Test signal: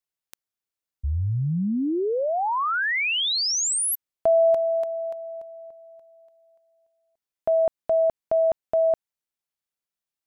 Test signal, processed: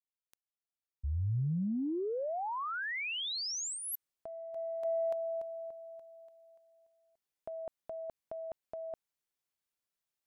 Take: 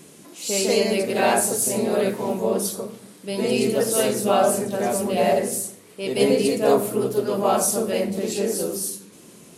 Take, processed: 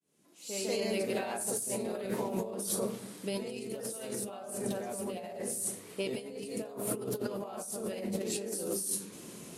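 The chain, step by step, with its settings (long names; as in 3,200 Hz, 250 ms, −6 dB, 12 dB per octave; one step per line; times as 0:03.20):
fade in at the beginning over 2.71 s
dynamic equaliser 9,200 Hz, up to +6 dB, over −43 dBFS, Q 4.1
compressor whose output falls as the input rises −30 dBFS, ratio −1
level −7 dB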